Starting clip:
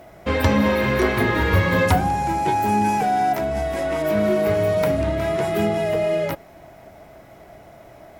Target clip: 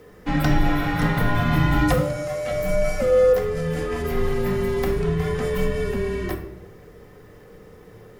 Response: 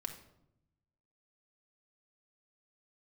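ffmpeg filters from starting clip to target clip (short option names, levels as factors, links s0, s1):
-filter_complex "[0:a]asettb=1/sr,asplit=3[s0][s1][s2];[s0]atrim=end=1.934[s3];[s1]atrim=start=1.93:end=2.51,asetpts=PTS-STARTPTS,afade=t=in:d=0.004:c=qsin,afade=t=out:st=0.576:d=0.004:c=qsin,highpass=710[s4];[s2]atrim=start=2.506[s5];[s3][s4]acrossfade=d=0.004:c1=hsin:c2=qsin[s6];[s6][s5]acrossfade=d=0.004:c1=qsin:c2=hsin,afreqshift=-230[s7];[1:a]atrim=start_sample=2205[s8];[s7][s8]afir=irnorm=-1:irlink=0"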